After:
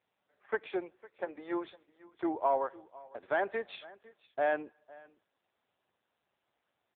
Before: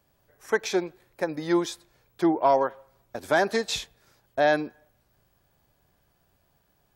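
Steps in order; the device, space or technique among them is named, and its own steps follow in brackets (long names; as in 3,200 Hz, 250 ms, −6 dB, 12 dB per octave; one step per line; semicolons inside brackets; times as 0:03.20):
0:01.24–0:02.29: high-pass filter 340 Hz → 120 Hz 12 dB per octave
satellite phone (band-pass filter 350–3,300 Hz; single-tap delay 505 ms −20.5 dB; level −7 dB; AMR narrowband 6.7 kbit/s 8,000 Hz)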